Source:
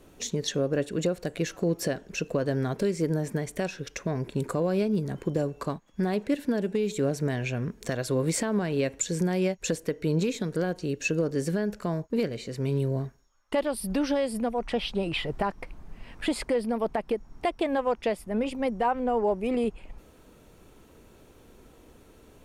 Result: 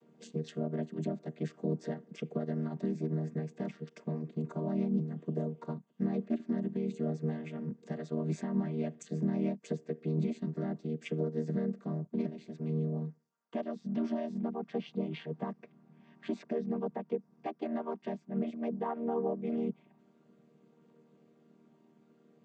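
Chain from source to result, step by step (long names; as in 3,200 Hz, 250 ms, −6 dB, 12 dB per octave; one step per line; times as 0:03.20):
channel vocoder with a chord as carrier major triad, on D#3
level −6 dB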